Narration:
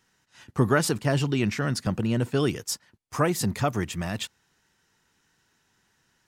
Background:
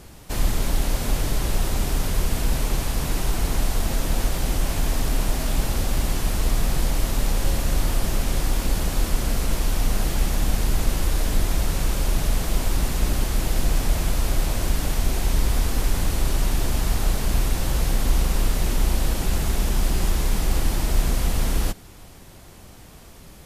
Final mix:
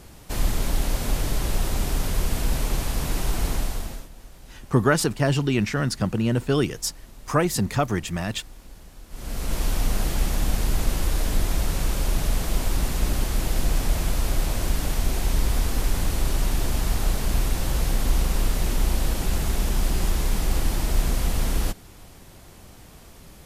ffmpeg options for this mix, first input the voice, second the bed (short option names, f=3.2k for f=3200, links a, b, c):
-filter_complex "[0:a]adelay=4150,volume=2.5dB[a];[1:a]volume=19.5dB,afade=t=out:st=3.48:d=0.61:silence=0.0891251,afade=t=in:st=9.09:d=0.54:silence=0.0891251[b];[a][b]amix=inputs=2:normalize=0"